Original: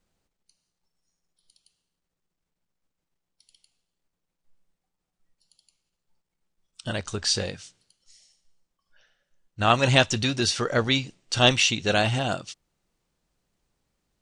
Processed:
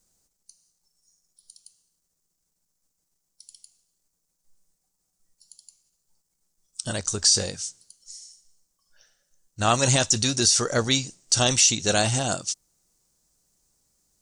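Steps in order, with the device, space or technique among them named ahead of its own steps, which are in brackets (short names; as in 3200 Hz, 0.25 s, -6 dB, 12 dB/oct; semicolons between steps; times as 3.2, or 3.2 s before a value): over-bright horn tweeter (resonant high shelf 4400 Hz +13.5 dB, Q 1.5; limiter -7.5 dBFS, peak gain reduction 9.5 dB)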